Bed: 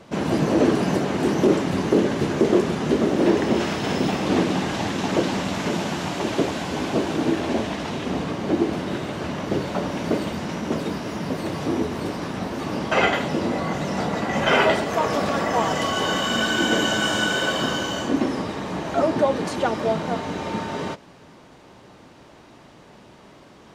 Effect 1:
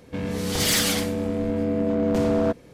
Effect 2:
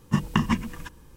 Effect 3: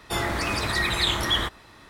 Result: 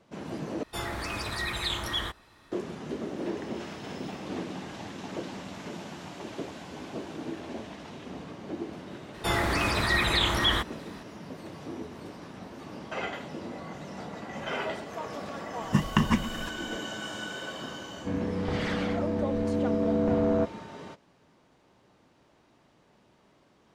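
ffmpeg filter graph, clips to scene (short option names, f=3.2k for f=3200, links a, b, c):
-filter_complex "[3:a]asplit=2[a][b];[0:a]volume=-15dB[c];[a]bandreject=f=2k:w=29[d];[b]acrossover=split=4000[e][f];[f]acompressor=threshold=-36dB:ratio=4:attack=1:release=60[g];[e][g]amix=inputs=2:normalize=0[h];[1:a]lowpass=1.7k[i];[c]asplit=2[j][k];[j]atrim=end=0.634[l];[d]atrim=end=1.89,asetpts=PTS-STARTPTS,volume=-7.5dB[m];[k]atrim=start=2.516[n];[h]atrim=end=1.89,asetpts=PTS-STARTPTS,afade=t=in:d=0.004:c=hsin,afade=t=out:st=1.886:d=0.004:c=hsin,adelay=403074S[o];[2:a]atrim=end=1.16,asetpts=PTS-STARTPTS,volume=-1dB,afade=t=in:d=0.004:c=hsin,afade=t=out:st=1.156:d=0.004:c=hsin,adelay=15610[p];[i]atrim=end=2.73,asetpts=PTS-STARTPTS,volume=-3.5dB,afade=t=in:d=0.004:c=hsin,afade=t=out:st=2.726:d=0.004:c=hsin,adelay=17930[q];[l][m]acrossfade=d=0.004:c1=hsin:c2=hsin[r];[r][n]acrossfade=d=0.004:c1=hsin:c2=hsin[s];[s][o][p][q]amix=inputs=4:normalize=0"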